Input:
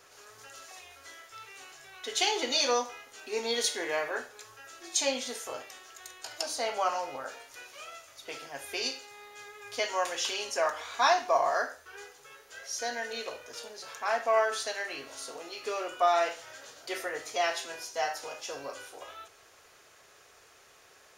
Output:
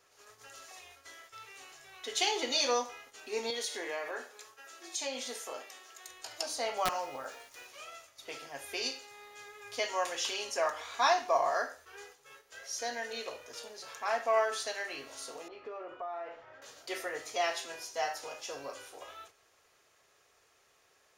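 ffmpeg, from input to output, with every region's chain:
-filter_complex "[0:a]asettb=1/sr,asplit=3[a][b][c];[a]atrim=end=3.504[d];[b]atrim=start=3.5:end=6.09,asetpts=PTS-STARTPTS,afade=t=in:d=0.004:c=qsin,afade=t=out:st=2.586:d=0.004:c=qsin,highpass=240,acompressor=threshold=-32dB:ratio=2.5:attack=3.2:release=140:knee=1:detection=peak[e];[c]atrim=start=6.086[f];[d][e]acrossfade=d=0.004:c1=hsin:c2=qsin[g];[g][f]acrossfade=d=0.004:c1=qsin:c2=hsin,asettb=1/sr,asplit=3[h][i][j];[h]atrim=end=6.774[k];[i]atrim=start=6.77:end=7.67,asetpts=PTS-STARTPTS,afade=t=in:d=0.004:c=qsin,afade=t=out:st=0.896:d=0.004:c=qsin,aeval=exprs='(mod(8.41*val(0)+1,2)-1)/8.41':c=same,acrusher=bits=8:mix=0:aa=0.5[l];[j]atrim=start=7.666[m];[k][l]acrossfade=d=0.004:c1=hsin:c2=qsin[n];[n][m]acrossfade=d=0.004:c1=qsin:c2=hsin,asettb=1/sr,asplit=3[o][p][q];[o]atrim=end=15.484[r];[p]atrim=start=15.48:end=16.62,asetpts=PTS-STARTPTS,afade=t=in:d=0.004:c=qsin,afade=t=out:st=1.136:d=0.004:c=qsin,lowpass=1.5k,acompressor=threshold=-38dB:ratio=3:attack=3.2:release=140:knee=1:detection=peak[s];[q]atrim=start=16.616[t];[r][s]acrossfade=d=0.004:c1=hsin:c2=qsin[u];[u][t]acrossfade=d=0.004:c1=qsin:c2=hsin,agate=range=-7dB:threshold=-52dB:ratio=16:detection=peak,bandreject=f=1.5k:w=21,volume=-2.5dB"

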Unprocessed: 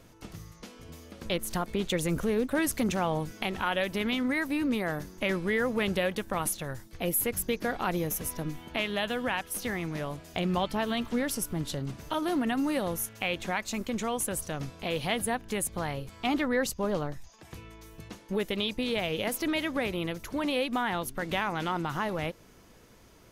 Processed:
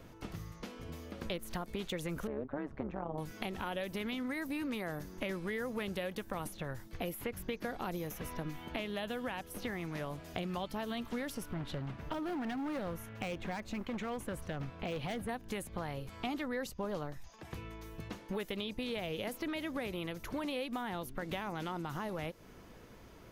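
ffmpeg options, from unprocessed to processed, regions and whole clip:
-filter_complex "[0:a]asettb=1/sr,asplit=3[a][b][c];[a]atrim=end=2.274[d];[b]atrim=start=2.27:end=3.18,asetpts=PTS-STARTPTS,afade=t=in:d=0.004:c=qsin,afade=t=out:st=0.906:d=0.004:c=qsin,lowpass=1k,tremolo=f=140:d=0.857[e];[c]atrim=start=3.176[f];[d][e]acrossfade=d=0.004:c1=hsin:c2=qsin[g];[g][f]acrossfade=d=0.004:c1=qsin:c2=hsin,asettb=1/sr,asplit=3[h][i][j];[h]atrim=end=11.544[k];[i]atrim=start=11.54:end=15.29,asetpts=PTS-STARTPTS,afade=t=in:d=0.004:c=qsin,afade=t=out:st=3.746:d=0.004:c=qsin,bass=f=250:g=3,treble=f=4k:g=-13,asoftclip=type=hard:threshold=-27dB[l];[j]atrim=start=15.286[m];[k][l]acrossfade=d=0.004:c1=hsin:c2=qsin[n];[n][m]acrossfade=d=0.004:c1=qsin:c2=hsin,equalizer=f=8.4k:w=0.5:g=-8.5,acrossover=split=720|4700[o][p][q];[o]acompressor=threshold=-41dB:ratio=4[r];[p]acompressor=threshold=-46dB:ratio=4[s];[q]acompressor=threshold=-52dB:ratio=4[t];[r][s][t]amix=inputs=3:normalize=0,volume=2dB"

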